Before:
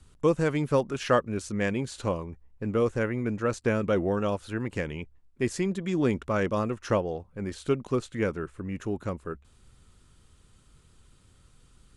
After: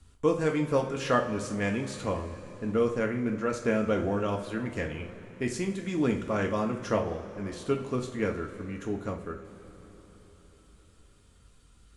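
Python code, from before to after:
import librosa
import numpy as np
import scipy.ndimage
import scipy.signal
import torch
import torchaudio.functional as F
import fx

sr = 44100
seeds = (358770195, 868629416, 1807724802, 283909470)

y = fx.rev_double_slope(x, sr, seeds[0], early_s=0.37, late_s=4.6, knee_db=-18, drr_db=1.5)
y = F.gain(torch.from_numpy(y), -3.0).numpy()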